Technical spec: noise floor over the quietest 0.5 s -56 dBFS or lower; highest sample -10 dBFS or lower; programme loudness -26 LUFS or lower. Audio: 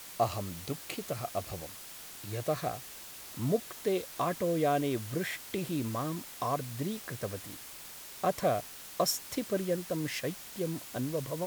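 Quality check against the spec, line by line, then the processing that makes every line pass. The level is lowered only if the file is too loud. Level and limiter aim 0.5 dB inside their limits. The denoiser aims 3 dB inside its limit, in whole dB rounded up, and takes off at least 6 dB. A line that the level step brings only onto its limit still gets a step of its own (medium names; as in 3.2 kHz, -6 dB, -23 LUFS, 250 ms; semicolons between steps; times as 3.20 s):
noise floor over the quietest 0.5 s -47 dBFS: fail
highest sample -15.0 dBFS: pass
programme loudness -34.5 LUFS: pass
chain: noise reduction 12 dB, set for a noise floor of -47 dBFS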